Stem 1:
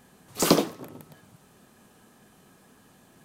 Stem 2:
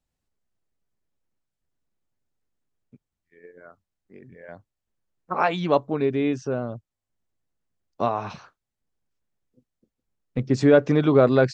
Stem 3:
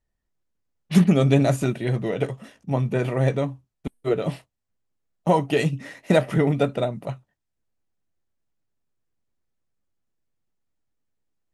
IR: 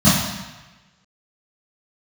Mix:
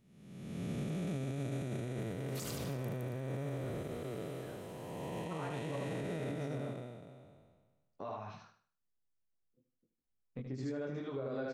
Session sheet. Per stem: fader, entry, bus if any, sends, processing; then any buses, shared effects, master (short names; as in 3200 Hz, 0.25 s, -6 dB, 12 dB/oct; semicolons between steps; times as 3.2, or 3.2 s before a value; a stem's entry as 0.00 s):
+1.0 dB, 2.00 s, bus A, no send, echo send -15 dB, HPF 1400 Hz; compressor, threshold -32 dBFS, peak gain reduction 11.5 dB
-9.0 dB, 0.00 s, bus A, no send, echo send -11.5 dB, detuned doubles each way 17 cents
6.26 s -6 dB -> 7.01 s -19 dB, 0.00 s, no bus, no send, no echo send, time blur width 0.854 s
bus A: 0.0 dB, high shelf 3600 Hz -7 dB; compressor 2:1, threshold -44 dBFS, peak gain reduction 12 dB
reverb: off
echo: feedback echo 76 ms, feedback 33%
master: high shelf 5300 Hz +6 dB; limiter -31 dBFS, peak gain reduction 11.5 dB